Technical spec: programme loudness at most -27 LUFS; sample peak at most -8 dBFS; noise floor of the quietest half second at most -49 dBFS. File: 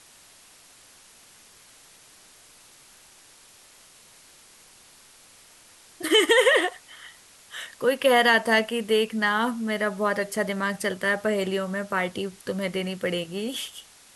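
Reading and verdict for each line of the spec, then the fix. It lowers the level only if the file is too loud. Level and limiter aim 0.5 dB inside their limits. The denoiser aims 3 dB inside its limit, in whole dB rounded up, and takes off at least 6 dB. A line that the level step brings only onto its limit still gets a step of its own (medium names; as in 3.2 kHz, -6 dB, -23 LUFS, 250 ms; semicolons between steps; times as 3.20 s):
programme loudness -24.0 LUFS: fail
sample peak -6.5 dBFS: fail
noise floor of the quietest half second -53 dBFS: pass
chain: trim -3.5 dB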